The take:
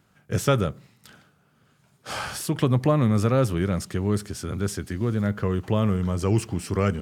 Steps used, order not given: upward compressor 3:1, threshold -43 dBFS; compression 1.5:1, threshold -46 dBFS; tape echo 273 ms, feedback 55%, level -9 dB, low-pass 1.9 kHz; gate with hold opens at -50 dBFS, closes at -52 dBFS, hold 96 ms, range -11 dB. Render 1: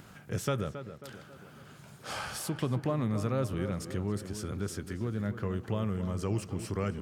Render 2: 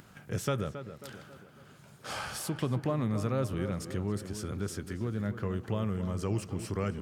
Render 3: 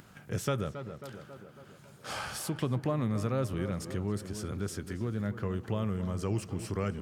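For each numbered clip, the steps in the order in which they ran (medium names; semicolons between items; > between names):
upward compressor > compression > gate with hold > tape echo; gate with hold > compression > upward compressor > tape echo; gate with hold > upward compressor > tape echo > compression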